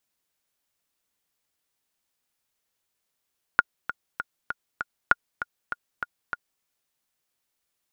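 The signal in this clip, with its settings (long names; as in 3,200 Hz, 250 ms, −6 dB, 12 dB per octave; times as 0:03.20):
click track 197 BPM, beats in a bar 5, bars 2, 1,430 Hz, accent 12.5 dB −3 dBFS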